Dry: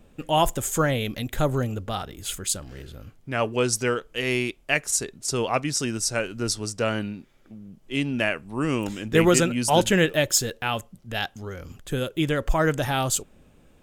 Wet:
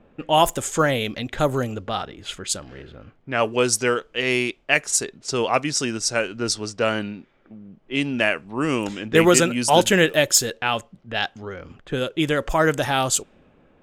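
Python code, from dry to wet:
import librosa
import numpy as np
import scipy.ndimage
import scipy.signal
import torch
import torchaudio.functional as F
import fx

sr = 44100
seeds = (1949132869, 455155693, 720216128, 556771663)

y = fx.env_lowpass(x, sr, base_hz=1900.0, full_db=-18.5)
y = fx.low_shelf(y, sr, hz=140.0, db=-11.5)
y = y * librosa.db_to_amplitude(4.5)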